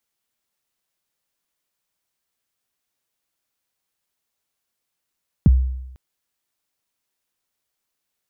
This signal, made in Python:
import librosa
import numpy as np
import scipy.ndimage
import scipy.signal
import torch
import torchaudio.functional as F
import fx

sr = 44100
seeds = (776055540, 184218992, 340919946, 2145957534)

y = fx.drum_kick(sr, seeds[0], length_s=0.5, level_db=-6.5, start_hz=240.0, end_hz=64.0, sweep_ms=25.0, decay_s=0.9, click=False)